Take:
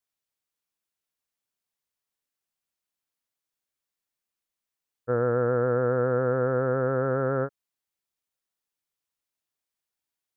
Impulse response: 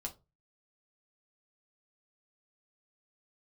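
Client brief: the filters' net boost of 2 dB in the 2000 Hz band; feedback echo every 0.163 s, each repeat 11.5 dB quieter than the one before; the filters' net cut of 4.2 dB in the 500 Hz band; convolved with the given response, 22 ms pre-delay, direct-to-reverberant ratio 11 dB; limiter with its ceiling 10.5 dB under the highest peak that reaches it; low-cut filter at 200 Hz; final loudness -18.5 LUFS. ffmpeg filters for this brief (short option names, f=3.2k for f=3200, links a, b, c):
-filter_complex "[0:a]highpass=200,equalizer=f=500:t=o:g=-4.5,equalizer=f=2k:t=o:g=3.5,alimiter=level_in=3.5dB:limit=-24dB:level=0:latency=1,volume=-3.5dB,aecho=1:1:163|326|489:0.266|0.0718|0.0194,asplit=2[a][b];[1:a]atrim=start_sample=2205,adelay=22[c];[b][c]afir=irnorm=-1:irlink=0,volume=-9.5dB[d];[a][d]amix=inputs=2:normalize=0,volume=19.5dB"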